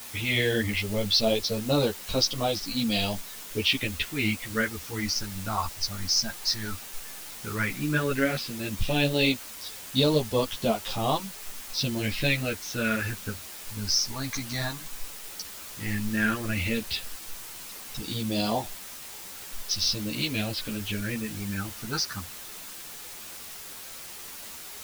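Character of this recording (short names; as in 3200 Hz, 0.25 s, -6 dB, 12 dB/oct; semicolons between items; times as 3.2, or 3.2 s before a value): phasing stages 4, 0.12 Hz, lowest notch 470–1800 Hz; a quantiser's noise floor 8-bit, dither triangular; a shimmering, thickened sound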